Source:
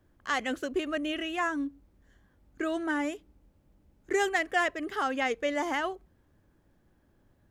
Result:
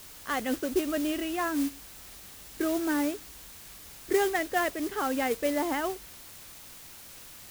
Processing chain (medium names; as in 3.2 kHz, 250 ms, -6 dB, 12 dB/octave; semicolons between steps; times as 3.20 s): tilt shelf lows +5 dB, about 800 Hz; word length cut 8-bit, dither triangular; modulation noise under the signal 14 dB